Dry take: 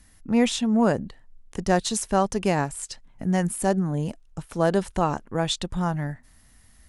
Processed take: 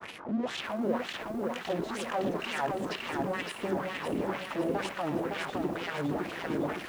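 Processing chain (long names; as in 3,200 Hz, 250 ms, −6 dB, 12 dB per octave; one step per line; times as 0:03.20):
wind on the microphone 260 Hz −31 dBFS
reversed playback
downward compressor, threshold −28 dBFS, peak gain reduction 14.5 dB
reversed playback
fuzz pedal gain 52 dB, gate −55 dBFS
LFO wah 2.1 Hz 290–2,900 Hz, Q 2.9
granular cloud 100 ms, grains 20 per second, spray 12 ms, pitch spread up and down by 0 semitones
feedback echo at a low word length 561 ms, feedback 55%, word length 8 bits, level −3.5 dB
level −7 dB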